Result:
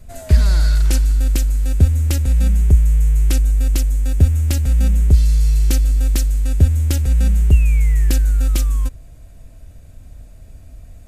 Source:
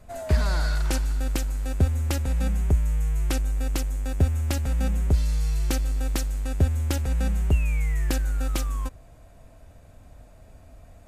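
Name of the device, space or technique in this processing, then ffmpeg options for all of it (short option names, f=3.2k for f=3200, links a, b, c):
smiley-face EQ: -af "lowshelf=f=94:g=8,equalizer=f=900:t=o:w=1.6:g=-8.5,highshelf=f=5.9k:g=4.5,volume=4.5dB"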